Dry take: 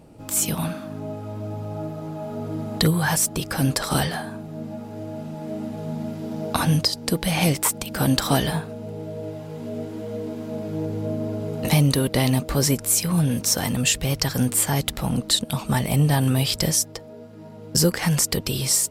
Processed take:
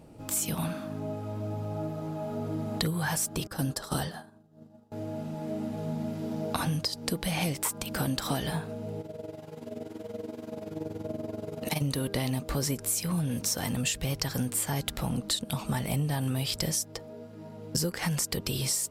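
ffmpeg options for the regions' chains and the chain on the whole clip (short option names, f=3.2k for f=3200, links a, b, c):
-filter_complex "[0:a]asettb=1/sr,asplit=3[a][b][c];[a]atrim=end=3.474[d];[b]atrim=start=3.47:end=4.92,asetpts=PTS-STARTPTS,afade=t=in:d=0.004:c=qsin,afade=t=out:st=1.446:d=0.004:c=qsin,equalizer=f=2.3k:w=3.6:g=-9.5,agate=range=-33dB:threshold=-22dB:ratio=3:release=100:detection=peak[e];[c]atrim=start=4.916[f];[d][e]acrossfade=d=0.004:c1=hsin:c2=qsin[g];[g][f]acrossfade=d=0.004:c1=qsin:c2=hsin,asettb=1/sr,asplit=3[h][i][j];[h]atrim=end=9.014[k];[i]atrim=start=9.01:end=11.82,asetpts=PTS-STARTPTS,afade=t=in:d=0.004:c=qsin,afade=t=out:st=2.806:d=0.004:c=qsin,lowshelf=f=140:g=-11.5,tremolo=f=21:d=0.788[l];[j]atrim=start=11.816[m];[k][l]acrossfade=d=0.004:c1=hsin:c2=qsin[n];[n][m]acrossfade=d=0.004:c1=qsin:c2=hsin,bandreject=f=200.3:t=h:w=4,bandreject=f=400.6:t=h:w=4,bandreject=f=600.9:t=h:w=4,bandreject=f=801.2:t=h:w=4,bandreject=f=1.0015k:t=h:w=4,bandreject=f=1.2018k:t=h:w=4,bandreject=f=1.4021k:t=h:w=4,bandreject=f=1.6024k:t=h:w=4,acompressor=threshold=-24dB:ratio=4,volume=-3dB"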